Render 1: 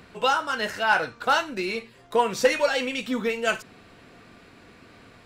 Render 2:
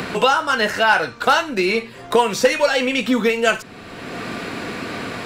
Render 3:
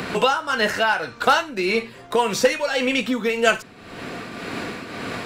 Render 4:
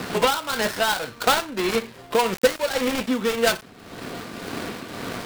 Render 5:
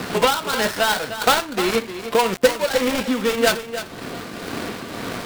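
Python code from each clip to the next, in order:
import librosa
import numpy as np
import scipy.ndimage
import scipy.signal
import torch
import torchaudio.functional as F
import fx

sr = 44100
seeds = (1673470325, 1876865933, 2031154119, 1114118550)

y1 = fx.band_squash(x, sr, depth_pct=70)
y1 = y1 * librosa.db_to_amplitude(7.0)
y2 = fx.tremolo_shape(y1, sr, shape='triangle', hz=1.8, depth_pct=60)
y3 = fx.dead_time(y2, sr, dead_ms=0.2)
y4 = y3 + 10.0 ** (-11.0 / 20.0) * np.pad(y3, (int(304 * sr / 1000.0), 0))[:len(y3)]
y4 = y4 * librosa.db_to_amplitude(2.5)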